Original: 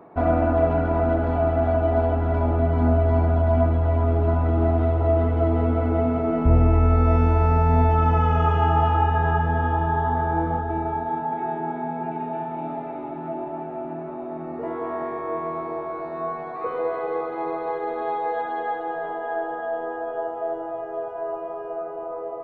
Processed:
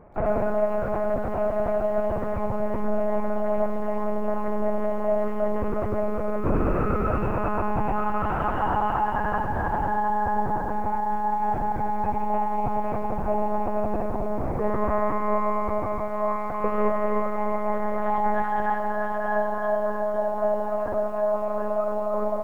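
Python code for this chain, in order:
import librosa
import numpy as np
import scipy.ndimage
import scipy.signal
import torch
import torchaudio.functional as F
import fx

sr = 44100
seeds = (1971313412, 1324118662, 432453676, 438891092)

p1 = scipy.signal.sosfilt(scipy.signal.butter(4, 2800.0, 'lowpass', fs=sr, output='sos'), x)
p2 = fx.low_shelf(p1, sr, hz=110.0, db=-7.5)
p3 = fx.rider(p2, sr, range_db=10, speed_s=2.0)
p4 = p3 + fx.echo_feedback(p3, sr, ms=507, feedback_pct=26, wet_db=-20.0, dry=0)
p5 = fx.lpc_monotone(p4, sr, seeds[0], pitch_hz=210.0, order=8)
y = fx.echo_crushed(p5, sr, ms=99, feedback_pct=35, bits=8, wet_db=-13)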